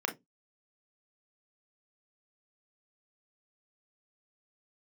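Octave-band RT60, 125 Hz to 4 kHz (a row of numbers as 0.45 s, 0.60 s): 0.25 s, 0.25 s, 0.20 s, 0.15 s, 0.10 s, 0.15 s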